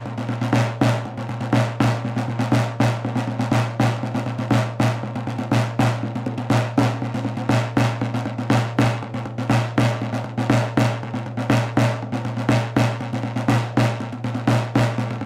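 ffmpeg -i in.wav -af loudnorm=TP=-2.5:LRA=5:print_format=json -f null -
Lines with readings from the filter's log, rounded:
"input_i" : "-21.8",
"input_tp" : "-3.6",
"input_lra" : "0.4",
"input_thresh" : "-31.8",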